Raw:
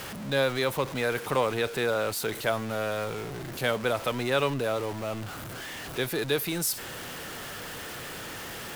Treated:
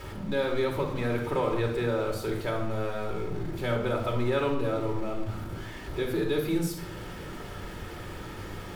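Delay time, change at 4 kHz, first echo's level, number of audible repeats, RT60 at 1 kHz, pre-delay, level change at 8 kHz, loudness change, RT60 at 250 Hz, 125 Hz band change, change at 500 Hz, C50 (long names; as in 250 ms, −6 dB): no echo audible, −7.5 dB, no echo audible, no echo audible, 0.85 s, 3 ms, −11.5 dB, −1.0 dB, 1.1 s, +3.5 dB, −0.5 dB, 5.5 dB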